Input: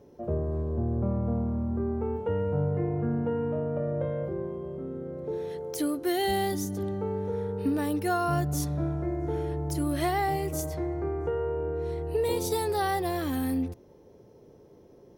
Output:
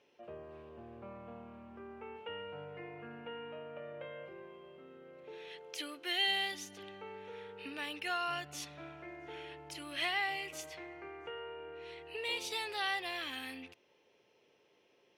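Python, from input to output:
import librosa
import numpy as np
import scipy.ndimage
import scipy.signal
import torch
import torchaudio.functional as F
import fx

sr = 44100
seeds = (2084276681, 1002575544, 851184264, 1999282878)

y = fx.bandpass_q(x, sr, hz=2700.0, q=3.8)
y = y * librosa.db_to_amplitude(10.5)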